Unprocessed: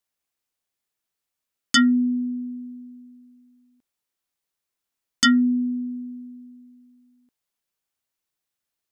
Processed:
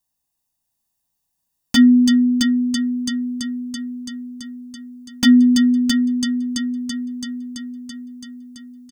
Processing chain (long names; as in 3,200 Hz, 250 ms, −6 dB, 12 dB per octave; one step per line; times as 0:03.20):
parametric band 2,000 Hz −13 dB 2.1 octaves
comb filter 1.1 ms, depth 66%
on a send: echo machine with several playback heads 333 ms, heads first and second, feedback 62%, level −7.5 dB
on the sum: slew-rate limiting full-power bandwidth 300 Hz
level +7 dB